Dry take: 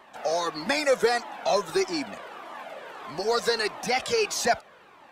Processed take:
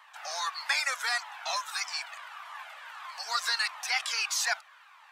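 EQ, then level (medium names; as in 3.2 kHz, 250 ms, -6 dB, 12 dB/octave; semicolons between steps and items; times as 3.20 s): inverse Chebyshev high-pass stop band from 380 Hz, stop band 50 dB; 0.0 dB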